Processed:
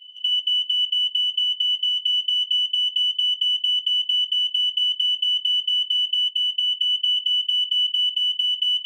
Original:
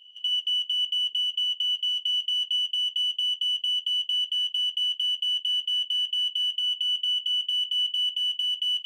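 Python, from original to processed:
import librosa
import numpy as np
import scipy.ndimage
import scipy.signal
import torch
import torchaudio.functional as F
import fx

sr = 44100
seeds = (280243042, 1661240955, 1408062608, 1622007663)

y = fx.small_body(x, sr, hz=(2100.0, 3000.0), ring_ms=90, db=14)
y = fx.band_widen(y, sr, depth_pct=100, at=(6.29, 7.17))
y = y * 10.0 ** (-1.5 / 20.0)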